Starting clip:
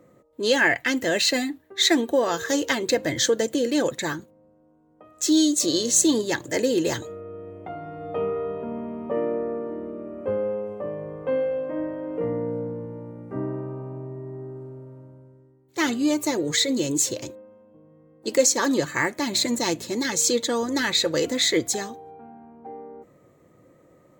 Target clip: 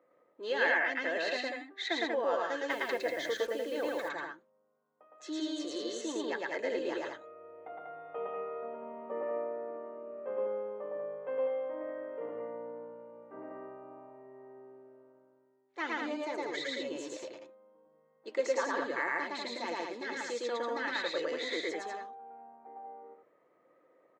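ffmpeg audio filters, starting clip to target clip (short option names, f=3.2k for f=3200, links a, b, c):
-filter_complex "[0:a]highpass=550,lowpass=2.2k,aecho=1:1:110.8|192.4:1|0.631,asettb=1/sr,asplit=3[a][b][c];[a]atrim=end=2.704[d];[b]atrim=start=2.7:end=4.09,asetpts=PTS-STARTPTS,afade=t=in:d=0.004:c=qsin,afade=t=out:st=1.386:d=0.004:c=qsin,acrusher=bits=6:mix=0:aa=0.5[e];[c]atrim=start=4.086[f];[d][e]acrossfade=d=0.004:c1=hsin:c2=qsin[g];[g][f]acrossfade=d=0.004:c1=qsin:c2=hsin,volume=-9dB"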